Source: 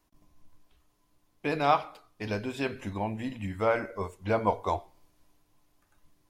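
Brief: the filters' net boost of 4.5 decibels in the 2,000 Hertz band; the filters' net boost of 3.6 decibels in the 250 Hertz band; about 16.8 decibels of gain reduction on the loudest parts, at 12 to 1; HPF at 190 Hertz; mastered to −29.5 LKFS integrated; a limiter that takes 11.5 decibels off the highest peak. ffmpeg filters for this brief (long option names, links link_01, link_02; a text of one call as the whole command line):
ffmpeg -i in.wav -af "highpass=190,equalizer=frequency=250:width_type=o:gain=6,equalizer=frequency=2000:width_type=o:gain=6,acompressor=threshold=-34dB:ratio=12,volume=14dB,alimiter=limit=-18dB:level=0:latency=1" out.wav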